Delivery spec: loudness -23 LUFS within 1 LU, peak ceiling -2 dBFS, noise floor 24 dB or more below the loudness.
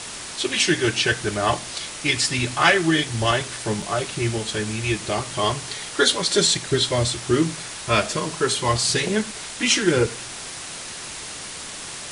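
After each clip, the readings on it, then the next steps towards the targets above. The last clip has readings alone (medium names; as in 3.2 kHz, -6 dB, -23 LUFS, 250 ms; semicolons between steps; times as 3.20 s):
dropouts 1; longest dropout 3.4 ms; noise floor -35 dBFS; noise floor target -46 dBFS; loudness -22.0 LUFS; peak level -3.5 dBFS; loudness target -23.0 LUFS
-> interpolate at 3.82 s, 3.4 ms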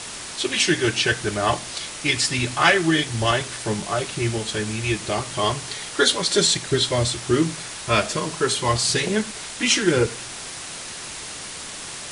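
dropouts 0; noise floor -35 dBFS; noise floor target -46 dBFS
-> noise reduction 11 dB, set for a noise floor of -35 dBFS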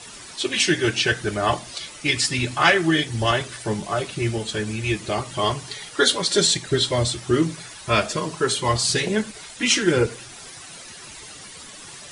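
noise floor -41 dBFS; noise floor target -46 dBFS
-> noise reduction 6 dB, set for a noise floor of -41 dBFS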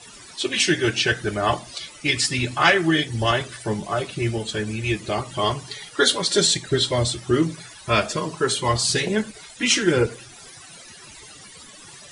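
noise floor -44 dBFS; noise floor target -46 dBFS
-> noise reduction 6 dB, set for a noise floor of -44 dBFS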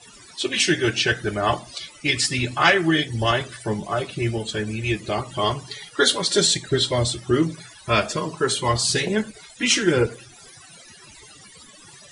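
noise floor -47 dBFS; loudness -22.0 LUFS; peak level -3.5 dBFS; loudness target -23.0 LUFS
-> trim -1 dB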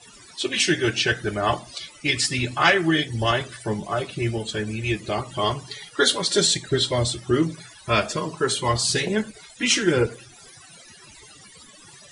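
loudness -23.0 LUFS; peak level -4.5 dBFS; noise floor -48 dBFS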